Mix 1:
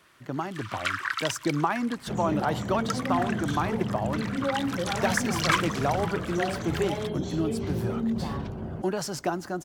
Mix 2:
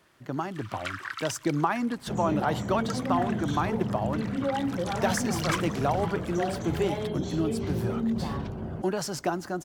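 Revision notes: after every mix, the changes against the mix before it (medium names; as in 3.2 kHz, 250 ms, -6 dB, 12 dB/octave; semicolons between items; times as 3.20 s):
first sound -6.5 dB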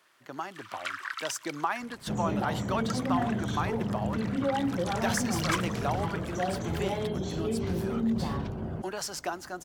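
speech: add high-pass 960 Hz 6 dB/octave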